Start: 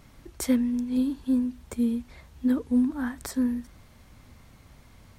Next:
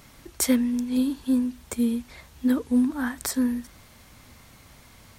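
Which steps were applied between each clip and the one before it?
spectral tilt +1.5 dB per octave
level +4.5 dB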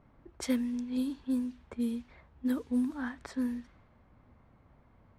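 low-pass that shuts in the quiet parts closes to 1,000 Hz, open at −18 dBFS
level −8.5 dB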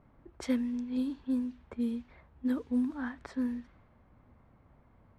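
low-pass filter 3,200 Hz 6 dB per octave

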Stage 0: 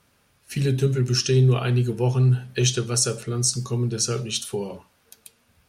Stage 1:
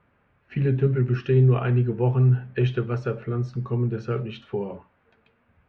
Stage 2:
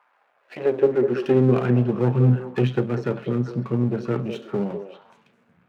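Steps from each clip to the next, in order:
low-pass filter 2,200 Hz 24 dB per octave
gain on one half-wave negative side −12 dB; high-pass filter sweep 850 Hz → 170 Hz, 0:00.09–0:01.63; echo through a band-pass that steps 198 ms, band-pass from 470 Hz, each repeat 1.4 octaves, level −6 dB; level +4 dB

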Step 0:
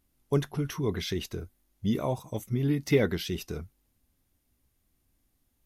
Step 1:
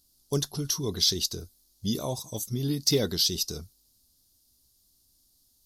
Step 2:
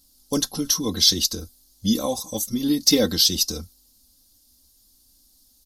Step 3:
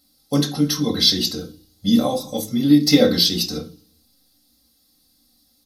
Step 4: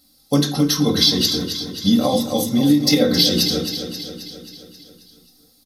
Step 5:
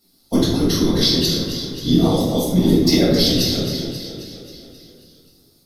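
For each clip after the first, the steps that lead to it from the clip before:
high shelf with overshoot 3,200 Hz +13 dB, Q 3; level −2 dB
comb filter 3.8 ms, depth 86%; level +5 dB
convolution reverb RT60 0.40 s, pre-delay 3 ms, DRR 3 dB; level −4 dB
downward compressor, threshold −16 dBFS, peak gain reduction 8.5 dB; repeating echo 267 ms, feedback 59%, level −9 dB; level +4.5 dB
random phases in short frames; rectangular room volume 230 cubic metres, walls mixed, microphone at 1.7 metres; level −6.5 dB

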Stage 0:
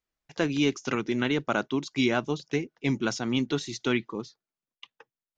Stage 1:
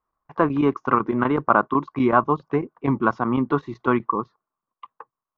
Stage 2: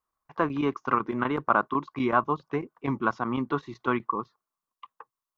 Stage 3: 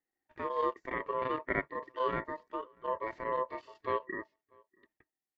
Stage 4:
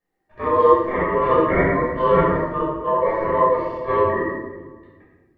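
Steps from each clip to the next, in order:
low-pass with resonance 1,100 Hz, resonance Q 7.7; square-wave tremolo 8 Hz, depth 65%, duty 90%; level +5 dB
high-shelf EQ 2,100 Hz +11 dB; level −7.5 dB
harmonic and percussive parts rebalanced percussive −18 dB; ring modulation 770 Hz; slap from a distant wall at 110 metres, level −29 dB
high-shelf EQ 2,100 Hz −11.5 dB; convolution reverb RT60 1.2 s, pre-delay 9 ms, DRR −9 dB; level +6 dB

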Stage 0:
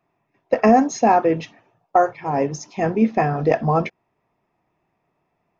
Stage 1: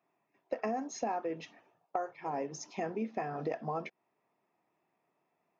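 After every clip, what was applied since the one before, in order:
high-pass filter 220 Hz 12 dB per octave
downward compressor 4 to 1, threshold −27 dBFS, peak gain reduction 14.5 dB
level −7 dB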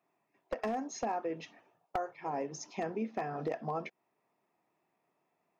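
wavefolder on the positive side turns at −27.5 dBFS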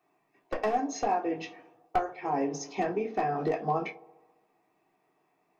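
delay with a band-pass on its return 68 ms, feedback 68%, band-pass 430 Hz, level −17 dB
convolution reverb RT60 0.20 s, pre-delay 3 ms, DRR −1 dB
level +3 dB

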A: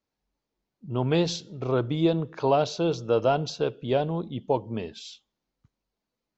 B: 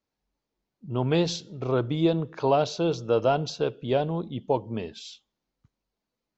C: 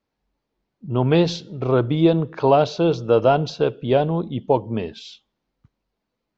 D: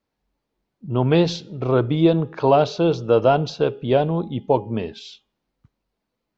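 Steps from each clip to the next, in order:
no processing that can be heard
high-frequency loss of the air 130 metres; level +7 dB
hum removal 411.2 Hz, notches 7

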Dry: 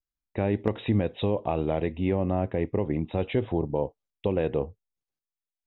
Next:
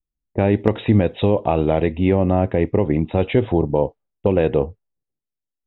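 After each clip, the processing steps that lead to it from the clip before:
low-pass that shuts in the quiet parts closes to 370 Hz, open at −22 dBFS
notch filter 1,100 Hz, Q 24
level +9 dB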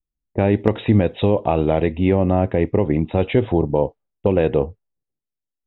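no processing that can be heard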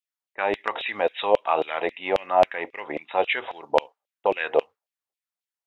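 auto-filter high-pass saw down 3.7 Hz 590–3,000 Hz

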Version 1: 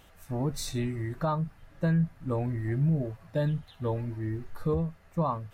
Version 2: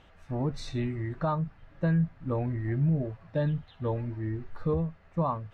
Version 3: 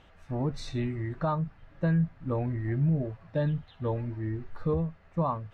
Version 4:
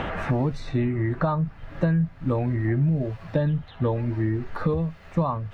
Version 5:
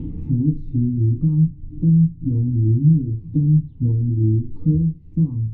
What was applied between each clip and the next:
low-pass filter 3,600 Hz 12 dB per octave
no processing that can be heard
multiband upward and downward compressor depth 100%; level +4.5 dB
inverse Chebyshev low-pass filter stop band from 570 Hz, stop band 40 dB; feedback delay network reverb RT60 0.32 s, low-frequency decay 0.95×, high-frequency decay 0.4×, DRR 2.5 dB; one half of a high-frequency compander encoder only; level +4 dB

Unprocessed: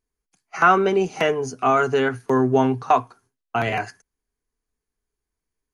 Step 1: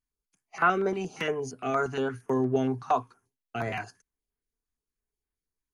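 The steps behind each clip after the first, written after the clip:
notch on a step sequencer 8.6 Hz 480–6,000 Hz
level −7 dB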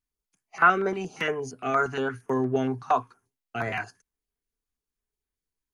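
dynamic equaliser 1,600 Hz, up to +6 dB, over −40 dBFS, Q 0.97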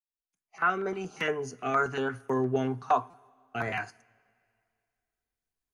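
fade in at the beginning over 1.29 s
coupled-rooms reverb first 0.29 s, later 2.4 s, from −21 dB, DRR 15 dB
buffer that repeats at 0:03.10, samples 256, times 5
level −2 dB

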